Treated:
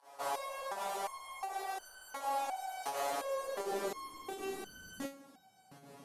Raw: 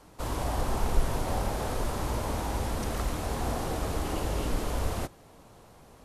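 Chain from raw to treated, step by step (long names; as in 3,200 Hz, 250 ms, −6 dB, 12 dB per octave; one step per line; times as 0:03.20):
fake sidechain pumping 83 BPM, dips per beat 1, −20 dB, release 102 ms
high-pass filter sweep 690 Hz → 190 Hz, 0:02.92–0:04.81
soft clipping −27.5 dBFS, distortion −14 dB
step-sequenced resonator 2.8 Hz 140–1,500 Hz
level +10 dB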